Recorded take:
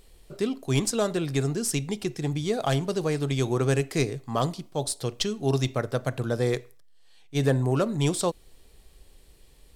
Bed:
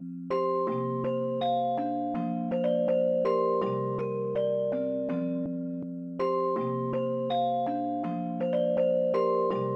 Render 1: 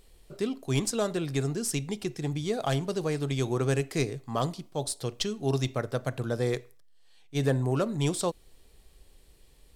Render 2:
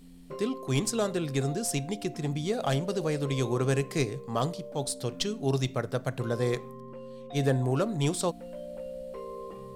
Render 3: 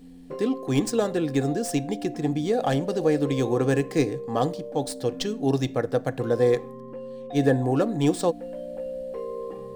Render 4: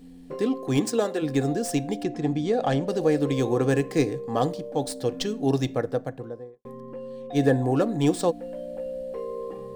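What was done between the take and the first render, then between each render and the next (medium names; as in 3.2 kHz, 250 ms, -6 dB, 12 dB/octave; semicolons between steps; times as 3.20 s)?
trim -3 dB
add bed -14 dB
median filter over 3 samples; small resonant body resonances 300/480/750/1700 Hz, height 11 dB, ringing for 40 ms
0.77–1.21 s: high-pass 99 Hz -> 390 Hz; 2.03–2.88 s: distance through air 54 m; 5.61–6.65 s: studio fade out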